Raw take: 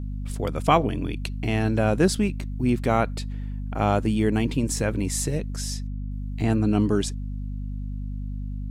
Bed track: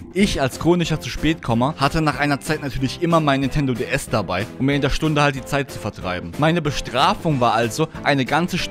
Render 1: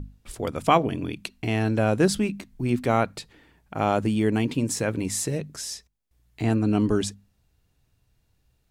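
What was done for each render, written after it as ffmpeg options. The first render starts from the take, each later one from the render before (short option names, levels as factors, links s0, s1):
-af "bandreject=f=50:t=h:w=6,bandreject=f=100:t=h:w=6,bandreject=f=150:t=h:w=6,bandreject=f=200:t=h:w=6,bandreject=f=250:t=h:w=6"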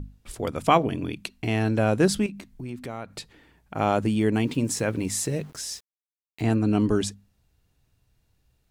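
-filter_complex "[0:a]asettb=1/sr,asplit=3[s0][s1][s2];[s0]atrim=end=2.264[s3];[s1]atrim=start=2.26:end=3.18,asetpts=PTS-STARTPTS,afade=t=in:d=0.004:c=qsin,afade=t=out:st=0.916:d=0.004:c=qsin,acompressor=threshold=0.0178:ratio=3:attack=3.2:release=140:knee=1:detection=peak[s4];[s2]atrim=start=3.176[s5];[s3][s4]acrossfade=d=0.004:c1=hsin:c2=qsin[s6];[s6][s5]acrossfade=d=0.004:c1=qsin:c2=hsin,asettb=1/sr,asplit=3[s7][s8][s9];[s7]atrim=end=4.444[s10];[s8]atrim=start=4.44:end=6.47,asetpts=PTS-STARTPTS,afade=t=in:d=0.004:c=qsin,afade=t=out:st=2.026:d=0.004:c=qsin,aeval=exprs='val(0)*gte(abs(val(0)),0.00447)':c=same[s11];[s9]atrim=start=6.466[s12];[s10][s11]acrossfade=d=0.004:c1=hsin:c2=qsin[s13];[s13][s12]acrossfade=d=0.004:c1=qsin:c2=hsin"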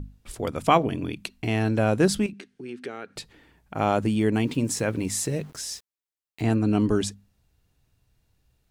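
-filter_complex "[0:a]asettb=1/sr,asplit=3[s0][s1][s2];[s0]atrim=end=2.334[s3];[s1]atrim=start=2.33:end=3.16,asetpts=PTS-STARTPTS,afade=t=in:d=0.004:c=qsin,afade=t=out:st=0.826:d=0.004:c=qsin,highpass=260,equalizer=f=410:t=q:w=4:g=9,equalizer=f=630:t=q:w=4:g=-8,equalizer=f=1000:t=q:w=4:g=-9,equalizer=f=1600:t=q:w=4:g=7,equalizer=f=2900:t=q:w=4:g=4,equalizer=f=7300:t=q:w=4:g=-6,lowpass=f=8900:w=0.5412,lowpass=f=8900:w=1.3066[s4];[s2]atrim=start=3.156[s5];[s3][s4]acrossfade=d=0.004:c1=hsin:c2=qsin[s6];[s6][s5]acrossfade=d=0.004:c1=qsin:c2=hsin"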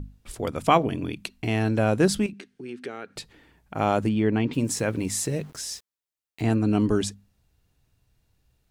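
-filter_complex "[0:a]asplit=3[s0][s1][s2];[s0]afade=t=out:st=4.08:d=0.02[s3];[s1]lowpass=3300,afade=t=in:st=4.08:d=0.02,afade=t=out:st=4.52:d=0.02[s4];[s2]afade=t=in:st=4.52:d=0.02[s5];[s3][s4][s5]amix=inputs=3:normalize=0"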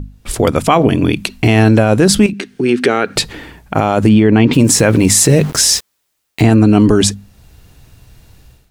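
-af "dynaudnorm=f=120:g=5:m=5.31,alimiter=level_in=3.16:limit=0.891:release=50:level=0:latency=1"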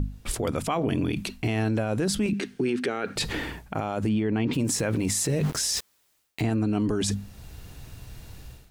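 -af "areverse,acompressor=threshold=0.112:ratio=6,areverse,alimiter=limit=0.133:level=0:latency=1:release=39"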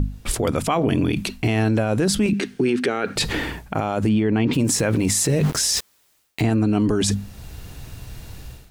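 -af "volume=2"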